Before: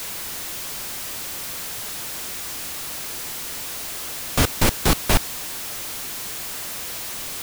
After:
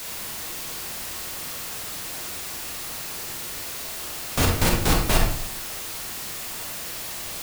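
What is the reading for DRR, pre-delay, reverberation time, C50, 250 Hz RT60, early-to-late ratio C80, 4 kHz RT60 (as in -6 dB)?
0.0 dB, 32 ms, 0.65 s, 3.0 dB, 0.80 s, 7.5 dB, 0.40 s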